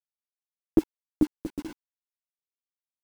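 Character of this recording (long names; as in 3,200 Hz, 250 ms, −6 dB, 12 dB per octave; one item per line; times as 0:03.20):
a quantiser's noise floor 8 bits, dither none
tremolo triangle 2.6 Hz, depth 40%
a shimmering, thickened sound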